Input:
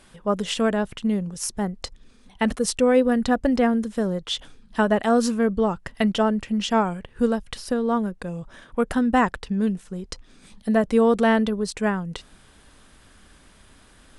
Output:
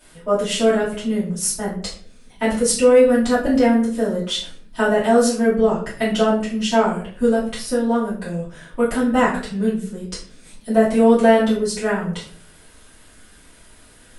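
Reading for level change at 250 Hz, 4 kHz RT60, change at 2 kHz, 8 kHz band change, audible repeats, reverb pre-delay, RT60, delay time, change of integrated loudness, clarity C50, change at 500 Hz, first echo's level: +3.0 dB, 0.35 s, +3.5 dB, +8.0 dB, no echo audible, 3 ms, 0.50 s, no echo audible, +4.5 dB, 6.5 dB, +6.0 dB, no echo audible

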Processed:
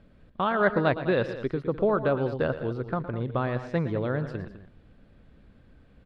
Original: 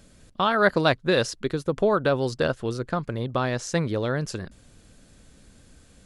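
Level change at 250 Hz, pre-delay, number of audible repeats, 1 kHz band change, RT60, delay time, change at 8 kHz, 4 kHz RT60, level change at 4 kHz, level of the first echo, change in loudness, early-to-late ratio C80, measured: −1.5 dB, no reverb audible, 2, −3.5 dB, no reverb audible, 113 ms, below −25 dB, no reverb audible, −12.0 dB, −13.0 dB, −3.0 dB, no reverb audible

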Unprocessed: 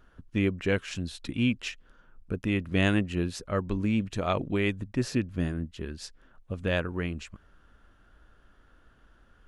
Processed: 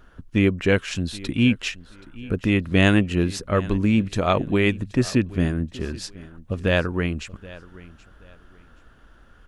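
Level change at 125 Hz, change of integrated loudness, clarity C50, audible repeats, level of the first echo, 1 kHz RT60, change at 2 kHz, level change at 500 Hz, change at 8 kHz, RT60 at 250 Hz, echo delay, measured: +7.5 dB, +7.5 dB, no reverb audible, 2, −20.0 dB, no reverb audible, +7.5 dB, +7.5 dB, +7.5 dB, no reverb audible, 777 ms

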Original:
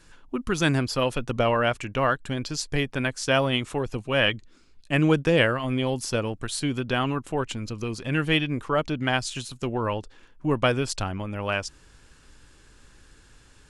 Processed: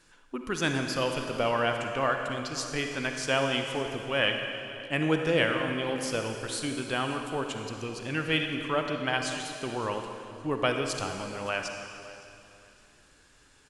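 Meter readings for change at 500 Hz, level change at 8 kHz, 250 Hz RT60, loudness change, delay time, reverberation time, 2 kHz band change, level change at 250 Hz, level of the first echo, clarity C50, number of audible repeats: −3.5 dB, −2.5 dB, 2.8 s, −4.0 dB, 565 ms, 2.6 s, −2.5 dB, −5.5 dB, −20.5 dB, 4.0 dB, 2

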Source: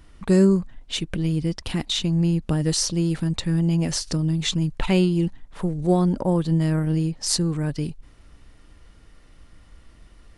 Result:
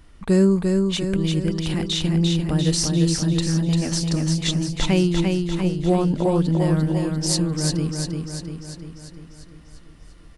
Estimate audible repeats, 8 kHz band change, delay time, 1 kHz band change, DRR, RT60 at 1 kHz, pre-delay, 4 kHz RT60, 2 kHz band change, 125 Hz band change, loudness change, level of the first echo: 7, +2.0 dB, 346 ms, +2.0 dB, no reverb audible, no reverb audible, no reverb audible, no reverb audible, +2.0 dB, +1.5 dB, +1.5 dB, −4.0 dB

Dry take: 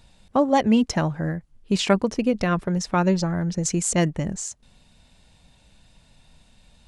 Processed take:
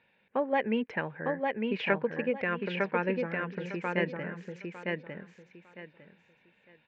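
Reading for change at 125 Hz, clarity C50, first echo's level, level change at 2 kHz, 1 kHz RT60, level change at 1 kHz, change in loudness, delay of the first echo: −14.5 dB, no reverb audible, −3.0 dB, 0.0 dB, no reverb audible, −8.0 dB, −9.0 dB, 904 ms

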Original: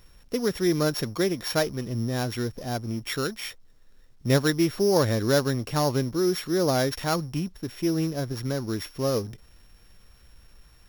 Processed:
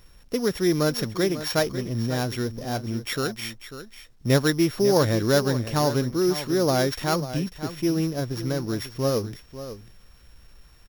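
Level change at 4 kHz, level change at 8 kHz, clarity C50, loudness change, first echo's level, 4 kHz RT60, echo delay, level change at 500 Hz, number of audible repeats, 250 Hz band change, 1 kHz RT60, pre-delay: +1.5 dB, +1.5 dB, no reverb audible, +1.5 dB, −12.5 dB, no reverb audible, 544 ms, +2.0 dB, 1, +1.5 dB, no reverb audible, no reverb audible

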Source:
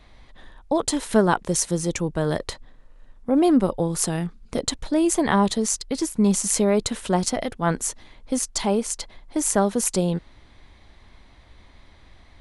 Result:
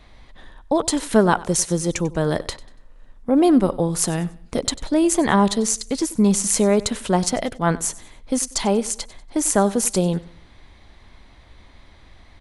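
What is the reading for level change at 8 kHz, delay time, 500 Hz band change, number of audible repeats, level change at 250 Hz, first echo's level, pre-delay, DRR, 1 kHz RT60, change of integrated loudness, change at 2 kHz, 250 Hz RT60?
+2.5 dB, 95 ms, +2.5 dB, 2, +2.5 dB, −19.5 dB, no reverb audible, no reverb audible, no reverb audible, +2.5 dB, +2.5 dB, no reverb audible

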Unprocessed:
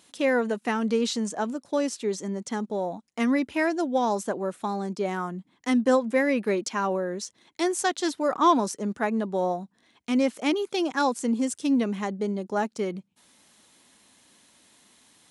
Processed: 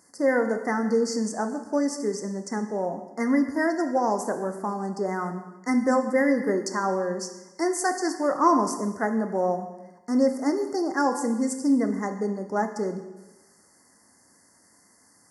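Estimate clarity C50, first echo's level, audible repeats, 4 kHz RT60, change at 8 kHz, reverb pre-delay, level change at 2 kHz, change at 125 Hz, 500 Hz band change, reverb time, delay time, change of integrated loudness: 9.0 dB, no echo audible, no echo audible, 1.0 s, +1.0 dB, 5 ms, 0.0 dB, +0.5 dB, +1.0 dB, 1.1 s, no echo audible, +1.0 dB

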